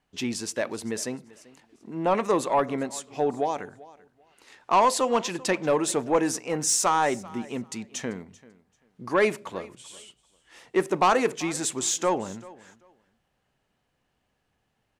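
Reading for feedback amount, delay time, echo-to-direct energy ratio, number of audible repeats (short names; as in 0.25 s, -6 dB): 20%, 0.389 s, -21.0 dB, 2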